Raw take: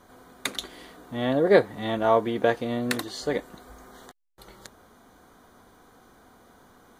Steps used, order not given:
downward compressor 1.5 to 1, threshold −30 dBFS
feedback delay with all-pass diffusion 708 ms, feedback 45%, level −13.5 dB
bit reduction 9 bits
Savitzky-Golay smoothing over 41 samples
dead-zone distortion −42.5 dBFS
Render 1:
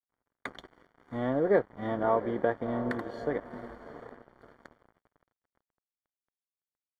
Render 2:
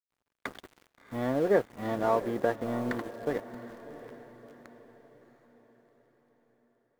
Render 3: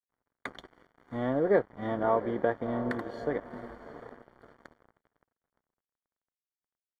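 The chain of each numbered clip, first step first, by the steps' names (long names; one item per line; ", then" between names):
bit reduction, then feedback delay with all-pass diffusion, then downward compressor, then dead-zone distortion, then Savitzky-Golay smoothing
Savitzky-Golay smoothing, then downward compressor, then bit reduction, then dead-zone distortion, then feedback delay with all-pass diffusion
feedback delay with all-pass diffusion, then bit reduction, then downward compressor, then dead-zone distortion, then Savitzky-Golay smoothing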